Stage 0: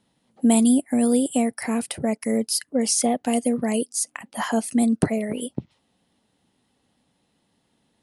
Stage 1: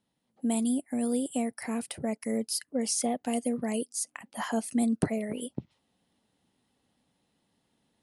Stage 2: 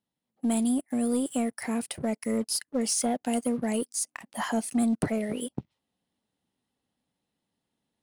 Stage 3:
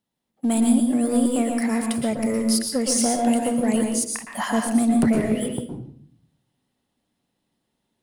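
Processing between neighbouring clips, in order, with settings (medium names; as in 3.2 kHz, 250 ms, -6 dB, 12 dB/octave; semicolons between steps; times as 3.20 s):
gain riding within 3 dB 2 s; trim -8.5 dB
waveshaping leveller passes 2; trim -4.5 dB
reverberation RT60 0.60 s, pre-delay 109 ms, DRR 2 dB; trim +4.5 dB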